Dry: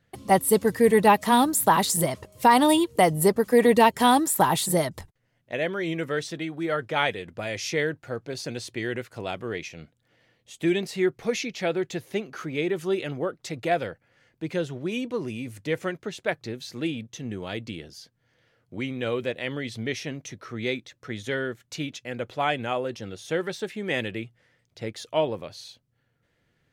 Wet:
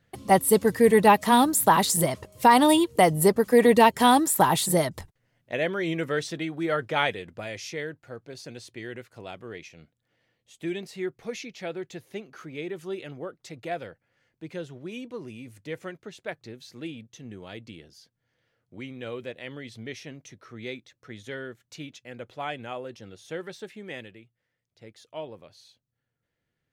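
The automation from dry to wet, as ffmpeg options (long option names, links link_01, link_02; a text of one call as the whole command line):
ffmpeg -i in.wav -af "volume=7dB,afade=type=out:start_time=6.88:duration=0.87:silence=0.375837,afade=type=out:start_time=23.73:duration=0.48:silence=0.316228,afade=type=in:start_time=24.21:duration=1.36:silence=0.473151" out.wav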